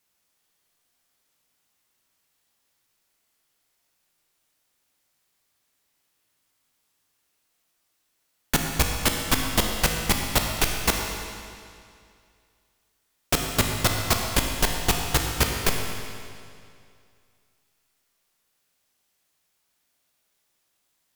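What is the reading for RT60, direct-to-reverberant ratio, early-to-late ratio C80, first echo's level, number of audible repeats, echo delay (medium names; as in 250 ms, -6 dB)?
2.3 s, 1.5 dB, 4.0 dB, no echo, no echo, no echo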